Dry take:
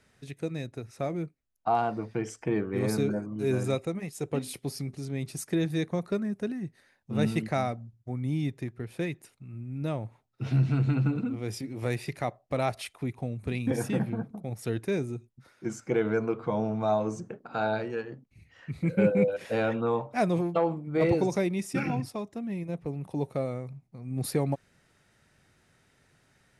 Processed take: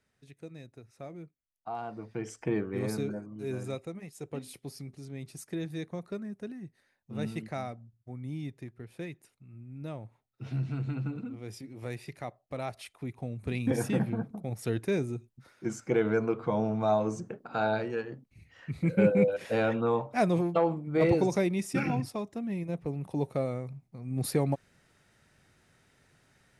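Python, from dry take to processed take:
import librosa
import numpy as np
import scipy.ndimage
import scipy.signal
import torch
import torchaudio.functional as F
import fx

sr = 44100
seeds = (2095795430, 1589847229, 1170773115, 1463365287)

y = fx.gain(x, sr, db=fx.line((1.74, -12.0), (2.44, -1.0), (3.31, -8.0), (12.74, -8.0), (13.68, 0.0)))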